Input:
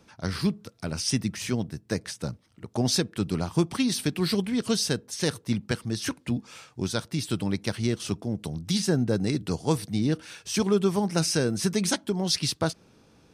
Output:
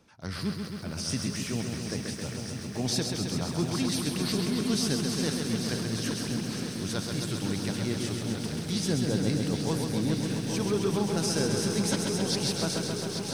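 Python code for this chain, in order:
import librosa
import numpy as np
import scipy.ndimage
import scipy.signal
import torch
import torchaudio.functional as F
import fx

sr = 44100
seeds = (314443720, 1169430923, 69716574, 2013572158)

y = fx.transient(x, sr, attack_db=-4, sustain_db=2)
y = fx.echo_swing(y, sr, ms=1397, ratio=1.5, feedback_pct=64, wet_db=-8.5)
y = fx.echo_crushed(y, sr, ms=133, feedback_pct=80, bits=9, wet_db=-5)
y = y * 10.0 ** (-4.5 / 20.0)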